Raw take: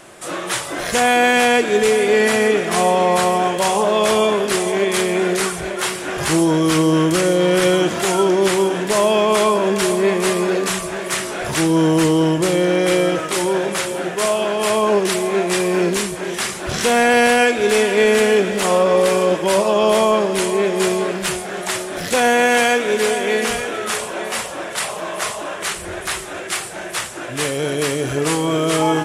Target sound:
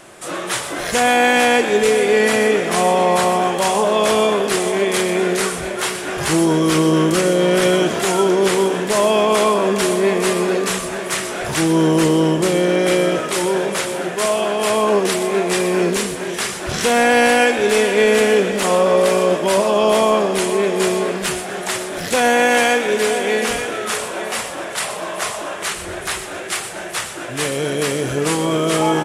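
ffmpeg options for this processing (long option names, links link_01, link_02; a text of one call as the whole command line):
ffmpeg -i in.wav -filter_complex "[0:a]asplit=5[link_01][link_02][link_03][link_04][link_05];[link_02]adelay=123,afreqshift=61,volume=-12.5dB[link_06];[link_03]adelay=246,afreqshift=122,volume=-20.5dB[link_07];[link_04]adelay=369,afreqshift=183,volume=-28.4dB[link_08];[link_05]adelay=492,afreqshift=244,volume=-36.4dB[link_09];[link_01][link_06][link_07][link_08][link_09]amix=inputs=5:normalize=0" out.wav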